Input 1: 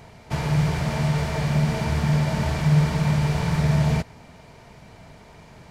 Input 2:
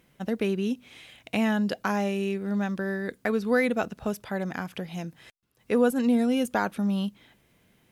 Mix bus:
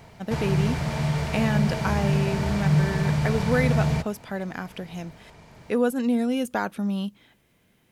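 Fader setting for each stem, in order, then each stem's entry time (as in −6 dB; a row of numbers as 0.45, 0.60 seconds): −2.5, −0.5 decibels; 0.00, 0.00 seconds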